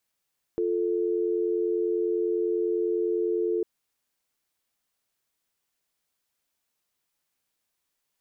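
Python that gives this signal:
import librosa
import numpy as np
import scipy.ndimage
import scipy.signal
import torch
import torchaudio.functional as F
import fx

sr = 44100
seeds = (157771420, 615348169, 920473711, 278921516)

y = fx.call_progress(sr, length_s=3.05, kind='dial tone', level_db=-26.0)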